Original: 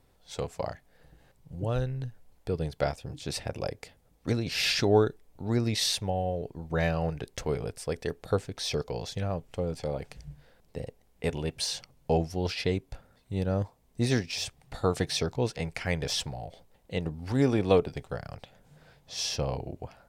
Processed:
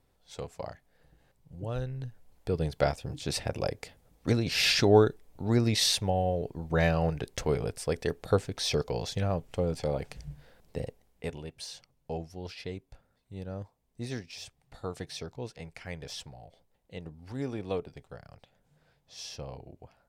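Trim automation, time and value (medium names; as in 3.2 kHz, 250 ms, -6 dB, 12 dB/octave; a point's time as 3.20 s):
1.65 s -5.5 dB
2.69 s +2 dB
10.84 s +2 dB
11.50 s -10.5 dB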